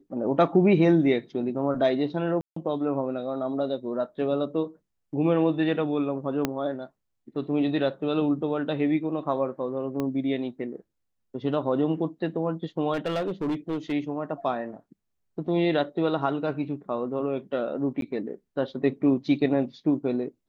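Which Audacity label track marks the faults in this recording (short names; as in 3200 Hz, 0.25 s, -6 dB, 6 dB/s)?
2.410000	2.560000	gap 0.154 s
6.450000	6.450000	pop -10 dBFS
10.000000	10.000000	pop -17 dBFS
12.930000	13.930000	clipped -23.5 dBFS
18.010000	18.020000	gap 12 ms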